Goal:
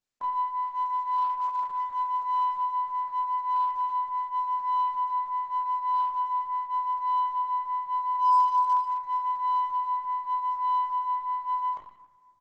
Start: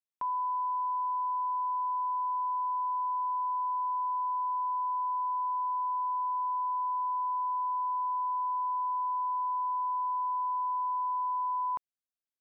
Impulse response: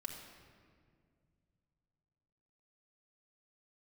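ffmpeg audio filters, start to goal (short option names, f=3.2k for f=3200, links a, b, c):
-filter_complex "[0:a]bandreject=f=890:w=24,asplit=3[a][b][c];[a]afade=t=out:st=8.14:d=0.02[d];[b]acontrast=41,afade=t=in:st=8.14:d=0.02,afade=t=out:st=8.84:d=0.02[e];[c]afade=t=in:st=8.84:d=0.02[f];[d][e][f]amix=inputs=3:normalize=0,flanger=delay=19:depth=2.7:speed=0.84,aeval=exprs='0.075*(cos(1*acos(clip(val(0)/0.075,-1,1)))-cos(1*PI/2))+0.0015*(cos(5*acos(clip(val(0)/0.075,-1,1)))-cos(5*PI/2))+0.000944*(cos(8*acos(clip(val(0)/0.075,-1,1)))-cos(8*PI/2))':c=same,aecho=1:1:30|69|119.7|185.6|271.3:0.631|0.398|0.251|0.158|0.1,asplit=2[g][h];[1:a]atrim=start_sample=2205[i];[h][i]afir=irnorm=-1:irlink=0,volume=-7dB[j];[g][j]amix=inputs=2:normalize=0" -ar 48000 -c:a libopus -b:a 10k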